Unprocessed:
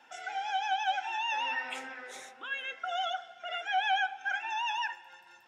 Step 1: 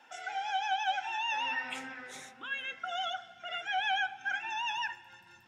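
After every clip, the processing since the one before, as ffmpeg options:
-af "asubboost=boost=10.5:cutoff=180"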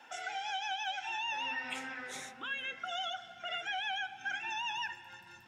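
-filter_complex "[0:a]acrossover=split=530|2100[a][b][c];[a]acompressor=threshold=-52dB:ratio=4[d];[b]acompressor=threshold=-45dB:ratio=4[e];[c]acompressor=threshold=-42dB:ratio=4[f];[d][e][f]amix=inputs=3:normalize=0,volume=3dB"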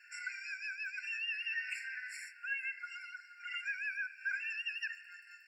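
-af "afftfilt=real='re*eq(mod(floor(b*sr/1024/1400),2),1)':imag='im*eq(mod(floor(b*sr/1024/1400),2),1)':win_size=1024:overlap=0.75,volume=1dB"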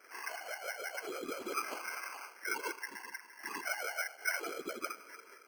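-af "afftfilt=real='hypot(re,im)*cos(2*PI*random(0))':imag='hypot(re,im)*sin(2*PI*random(1))':win_size=512:overlap=0.75,lowpass=f=2.6k:t=q:w=0.5098,lowpass=f=2.6k:t=q:w=0.6013,lowpass=f=2.6k:t=q:w=0.9,lowpass=f=2.6k:t=q:w=2.563,afreqshift=-3100,acrusher=samples=12:mix=1:aa=0.000001,volume=7.5dB"

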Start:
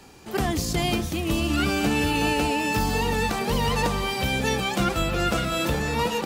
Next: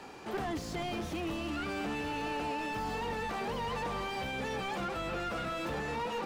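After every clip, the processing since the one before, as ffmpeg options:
-filter_complex "[0:a]alimiter=limit=-21dB:level=0:latency=1:release=164,asplit=2[a][b];[b]highpass=f=720:p=1,volume=20dB,asoftclip=type=tanh:threshold=-21dB[c];[a][c]amix=inputs=2:normalize=0,lowpass=f=1.2k:p=1,volume=-6dB,volume=-6dB"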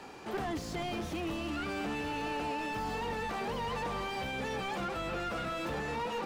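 -af anull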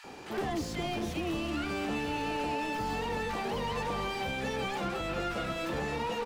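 -filter_complex "[0:a]acrossover=split=1200[a][b];[a]adelay=40[c];[c][b]amix=inputs=2:normalize=0,volume=3dB"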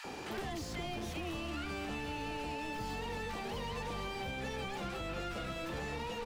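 -filter_complex "[0:a]acrossover=split=110|580|2000[a][b][c][d];[a]acompressor=threshold=-49dB:ratio=4[e];[b]acompressor=threshold=-49dB:ratio=4[f];[c]acompressor=threshold=-51dB:ratio=4[g];[d]acompressor=threshold=-52dB:ratio=4[h];[e][f][g][h]amix=inputs=4:normalize=0,volume=4dB"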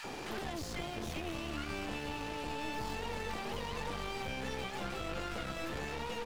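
-af "aeval=exprs='clip(val(0),-1,0.00422)':c=same,volume=3dB"

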